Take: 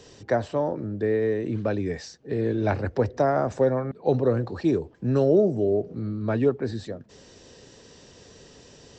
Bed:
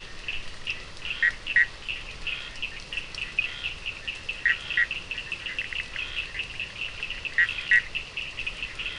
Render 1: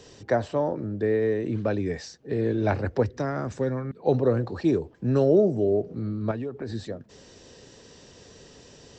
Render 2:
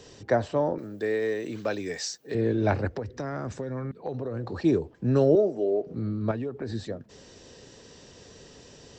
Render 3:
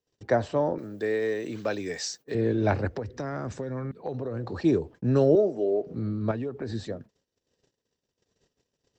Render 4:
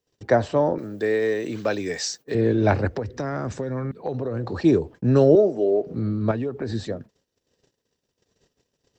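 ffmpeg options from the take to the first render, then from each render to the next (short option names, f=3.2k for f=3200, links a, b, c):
-filter_complex "[0:a]asettb=1/sr,asplit=3[a][b][c];[a]atrim=end=3.034[d];[b]atrim=start=3.03:end=3.97,asetpts=PTS-STARTPTS,afade=t=in:d=0.004:c=qsin,afade=t=out:st=0.936:d=0.004:c=qsin,equalizer=f=680:t=o:w=1.2:g=-11.5[e];[c]atrim=start=3.966[f];[d][e]acrossfade=d=0.004:c1=hsin:c2=qsin[g];[g][f]acrossfade=d=0.004:c1=qsin:c2=hsin,asettb=1/sr,asplit=3[h][i][j];[h]atrim=end=6.314[k];[i]atrim=start=6.31:end=6.74,asetpts=PTS-STARTPTS,afade=t=in:d=0.004:c=qsin,afade=t=out:st=0.426:d=0.004:c=qsin,acompressor=threshold=-28dB:ratio=8:attack=3.2:release=140:knee=1:detection=peak[l];[j]atrim=start=6.736[m];[k][l]acrossfade=d=0.004:c1=hsin:c2=qsin[n];[n][m]acrossfade=d=0.004:c1=qsin:c2=hsin"
-filter_complex "[0:a]asettb=1/sr,asplit=3[a][b][c];[a]atrim=end=0.784[d];[b]atrim=start=0.78:end=2.35,asetpts=PTS-STARTPTS,afade=t=in:d=0.004:c=qsin,afade=t=out:st=1.566:d=0.004:c=qsin,aemphasis=mode=production:type=riaa[e];[c]atrim=start=2.346[f];[d][e]acrossfade=d=0.004:c1=hsin:c2=qsin[g];[g][f]acrossfade=d=0.004:c1=qsin:c2=hsin,asettb=1/sr,asplit=3[h][i][j];[h]atrim=end=2.874[k];[i]atrim=start=2.87:end=4.54,asetpts=PTS-STARTPTS,afade=t=in:d=0.004:c=qsin,afade=t=out:st=1.666:d=0.004:c=qsin,acompressor=threshold=-28dB:ratio=12:attack=3.2:release=140:knee=1:detection=peak[l];[j]atrim=start=4.536[m];[k][l]acrossfade=d=0.004:c1=hsin:c2=qsin[n];[n][m]acrossfade=d=0.004:c1=qsin:c2=hsin,asettb=1/sr,asplit=3[o][p][q];[o]atrim=end=5.354[r];[p]atrim=start=5.35:end=5.87,asetpts=PTS-STARTPTS,afade=t=in:d=0.004:c=qsin,afade=t=out:st=0.516:d=0.004:c=qsin,highpass=370,lowpass=6.8k[s];[q]atrim=start=5.866[t];[r][s]acrossfade=d=0.004:c1=hsin:c2=qsin[u];[u][t]acrossfade=d=0.004:c1=qsin:c2=hsin"
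-af "agate=range=-38dB:threshold=-45dB:ratio=16:detection=peak"
-af "volume=5dB"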